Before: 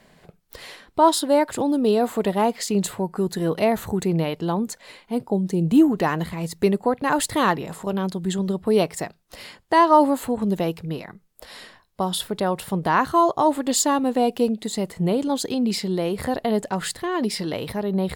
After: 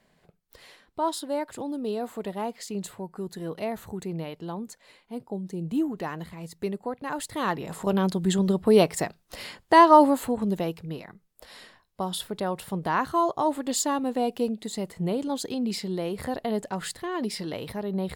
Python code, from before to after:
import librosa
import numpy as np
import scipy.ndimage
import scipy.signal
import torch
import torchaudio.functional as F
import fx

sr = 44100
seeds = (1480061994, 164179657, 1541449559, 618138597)

y = fx.gain(x, sr, db=fx.line((7.3, -11.0), (7.87, 1.0), (9.8, 1.0), (10.79, -6.0)))